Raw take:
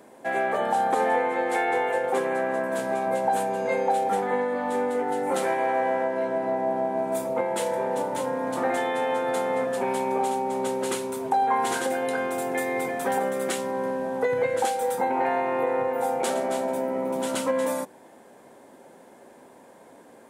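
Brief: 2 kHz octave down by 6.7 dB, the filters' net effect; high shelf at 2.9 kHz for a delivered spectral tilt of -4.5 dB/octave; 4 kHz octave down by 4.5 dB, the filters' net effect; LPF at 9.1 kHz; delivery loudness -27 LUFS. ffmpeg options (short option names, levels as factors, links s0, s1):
-af "lowpass=9100,equalizer=f=2000:t=o:g=-8.5,highshelf=f=2900:g=3,equalizer=f=4000:t=o:g=-5"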